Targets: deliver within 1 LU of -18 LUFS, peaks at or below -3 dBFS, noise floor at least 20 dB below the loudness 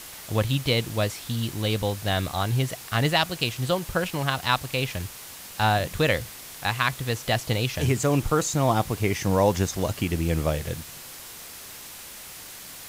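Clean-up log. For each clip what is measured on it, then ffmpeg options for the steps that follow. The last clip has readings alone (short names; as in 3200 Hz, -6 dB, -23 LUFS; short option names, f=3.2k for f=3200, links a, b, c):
noise floor -42 dBFS; noise floor target -46 dBFS; loudness -25.5 LUFS; peak -5.5 dBFS; loudness target -18.0 LUFS
-> -af "afftdn=nr=6:nf=-42"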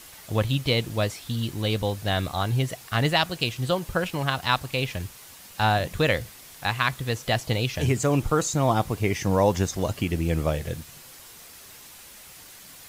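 noise floor -47 dBFS; loudness -25.5 LUFS; peak -5.5 dBFS; loudness target -18.0 LUFS
-> -af "volume=7.5dB,alimiter=limit=-3dB:level=0:latency=1"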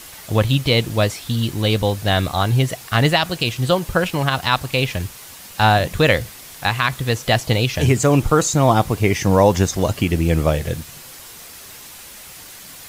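loudness -18.5 LUFS; peak -3.0 dBFS; noise floor -39 dBFS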